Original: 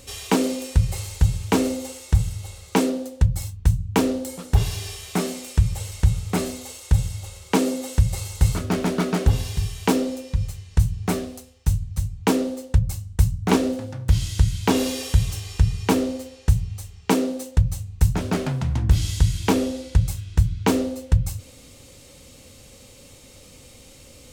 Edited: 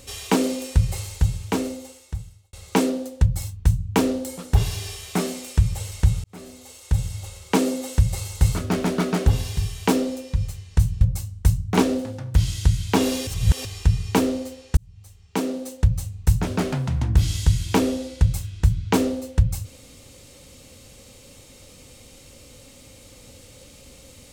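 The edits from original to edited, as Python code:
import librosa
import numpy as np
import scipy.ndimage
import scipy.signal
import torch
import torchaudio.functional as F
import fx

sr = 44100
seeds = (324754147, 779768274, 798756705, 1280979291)

y = fx.edit(x, sr, fx.fade_out_span(start_s=0.93, length_s=1.6),
    fx.fade_in_span(start_s=6.24, length_s=0.97),
    fx.cut(start_s=11.01, length_s=1.74),
    fx.reverse_span(start_s=15.01, length_s=0.38),
    fx.fade_in_span(start_s=16.51, length_s=1.11), tone=tone)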